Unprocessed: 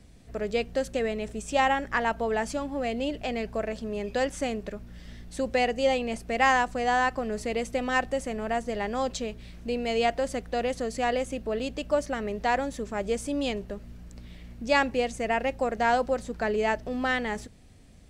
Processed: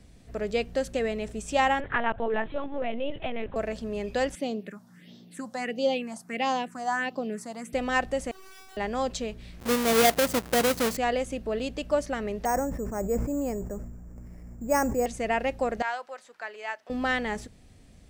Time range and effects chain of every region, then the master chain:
1.8–3.56 LPC vocoder at 8 kHz pitch kept + mismatched tape noise reduction encoder only
4.35–7.73 steep high-pass 150 Hz + phaser stages 4, 1.5 Hz, lowest notch 390–1900 Hz
8.31–8.77 low shelf 330 Hz +10 dB + wrapped overs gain 25.5 dB + resonator 380 Hz, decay 0.67 s, mix 100%
9.6–10.97 half-waves squared off + HPF 87 Hz + high shelf 8600 Hz +6.5 dB
12.45–15.06 Bessel low-pass 1200 Hz, order 6 + careless resampling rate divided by 6×, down none, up hold + sustainer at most 41 dB/s
15.82–16.9 HPF 1200 Hz + high shelf 2600 Hz -10.5 dB
whole clip: dry

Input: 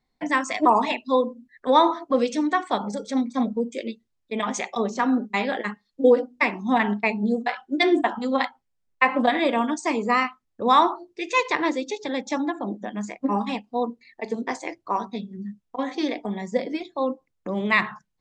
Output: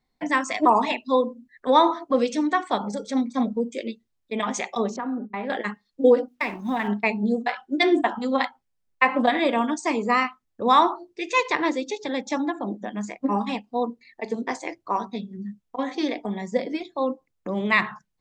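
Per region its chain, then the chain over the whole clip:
4.96–5.5 LPF 1600 Hz + compressor 3:1, threshold -27 dBFS
6.28–6.88 G.711 law mismatch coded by A + compressor 2.5:1, threshold -22 dBFS
whole clip: dry

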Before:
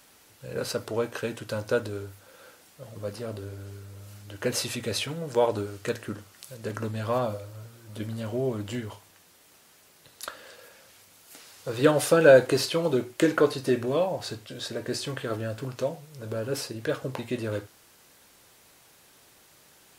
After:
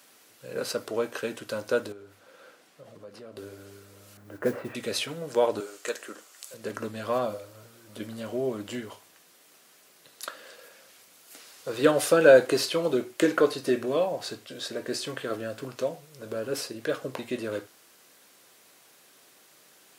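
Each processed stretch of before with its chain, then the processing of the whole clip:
1.92–3.37 LPF 3500 Hz 6 dB/oct + compressor 4:1, threshold -41 dBFS
4.17–4.75 LPF 1800 Hz 24 dB/oct + low shelf 470 Hz +4.5 dB + modulation noise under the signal 24 dB
5.6–6.54 HPF 430 Hz + bell 7300 Hz +7 dB 0.47 oct + short-mantissa float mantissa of 6-bit
whole clip: HPF 210 Hz 12 dB/oct; notch 880 Hz, Q 12

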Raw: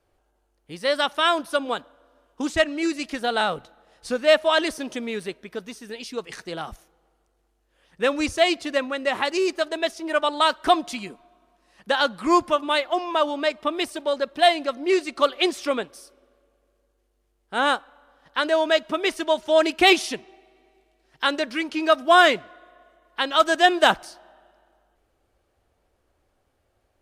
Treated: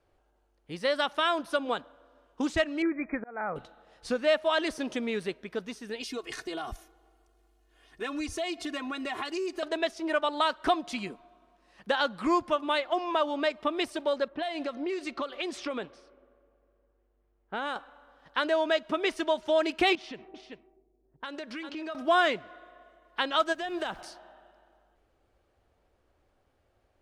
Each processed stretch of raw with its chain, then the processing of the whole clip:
2.82–3.56 upward compressor, threshold -34 dBFS + auto swell 0.541 s + brick-wall FIR low-pass 2500 Hz
6.01–9.63 high shelf 8300 Hz +10 dB + comb 2.8 ms, depth 91% + compressor 4:1, threshold -31 dBFS
14.28–17.76 low-pass opened by the level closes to 1800 Hz, open at -17.5 dBFS + compressor 12:1, threshold -27 dBFS
19.95–21.95 low-pass opened by the level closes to 330 Hz, open at -22.5 dBFS + echo 0.388 s -14 dB + compressor, threshold -34 dBFS
23.52–24 compressor 12:1, threshold -27 dBFS + added noise pink -59 dBFS
whole clip: compressor 2:1, threshold -25 dBFS; high shelf 8000 Hz -12 dB; gain -1 dB

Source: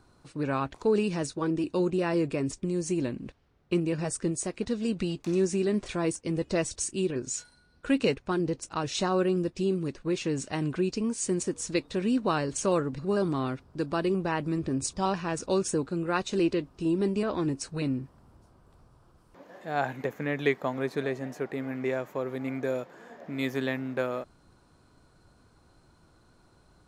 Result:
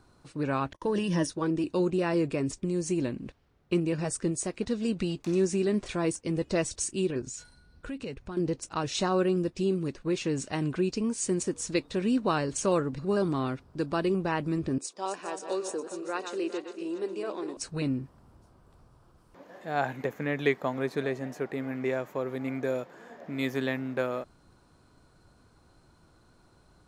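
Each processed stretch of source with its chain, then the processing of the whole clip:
0.73–1.31 ripple EQ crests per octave 1.2, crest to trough 12 dB + gate -47 dBFS, range -32 dB
7.21–8.37 low shelf 140 Hz +10.5 dB + compressor 3:1, threshold -38 dBFS
14.78–17.57 regenerating reverse delay 0.205 s, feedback 54%, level -8 dB + ladder high-pass 300 Hz, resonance 25%
whole clip: dry

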